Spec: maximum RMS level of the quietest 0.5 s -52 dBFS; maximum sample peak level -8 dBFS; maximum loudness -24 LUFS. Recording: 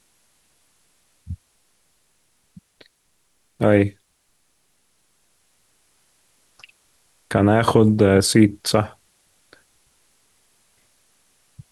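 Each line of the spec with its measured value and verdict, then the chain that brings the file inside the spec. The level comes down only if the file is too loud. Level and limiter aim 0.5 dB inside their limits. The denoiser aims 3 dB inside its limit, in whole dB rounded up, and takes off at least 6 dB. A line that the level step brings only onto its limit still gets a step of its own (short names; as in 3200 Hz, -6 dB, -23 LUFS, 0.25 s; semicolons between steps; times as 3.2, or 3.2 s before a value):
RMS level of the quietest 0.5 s -65 dBFS: OK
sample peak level -3.5 dBFS: fail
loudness -18.0 LUFS: fail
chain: gain -6.5 dB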